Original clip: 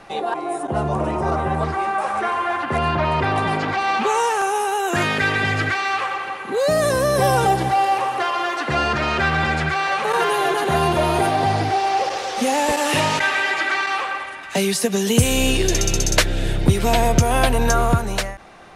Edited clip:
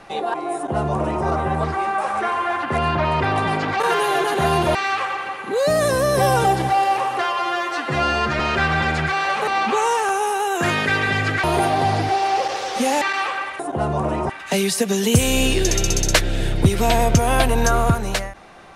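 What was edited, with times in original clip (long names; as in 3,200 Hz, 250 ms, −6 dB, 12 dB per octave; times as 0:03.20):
0:00.55–0:01.25: duplicate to 0:14.33
0:03.80–0:05.76: swap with 0:10.10–0:11.05
0:08.25–0:09.02: time-stretch 1.5×
0:12.63–0:13.75: remove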